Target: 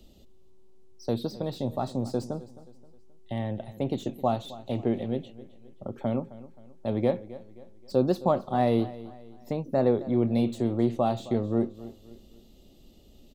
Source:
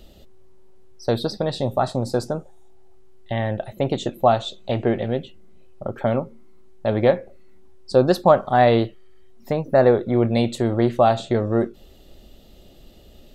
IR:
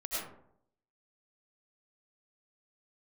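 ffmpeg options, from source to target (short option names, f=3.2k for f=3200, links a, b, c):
-filter_complex "[0:a]equalizer=f=250:t=o:w=0.67:g=5,equalizer=f=630:t=o:w=0.67:g=-3,equalizer=f=1.6k:t=o:w=0.67:g=-10,equalizer=f=6.3k:t=o:w=0.67:g=3,acrossover=split=110|2400[a][b][c];[c]asoftclip=type=tanh:threshold=-36.5dB[d];[a][b][d]amix=inputs=3:normalize=0,aecho=1:1:264|528|792:0.133|0.0547|0.0224,volume=-7.5dB"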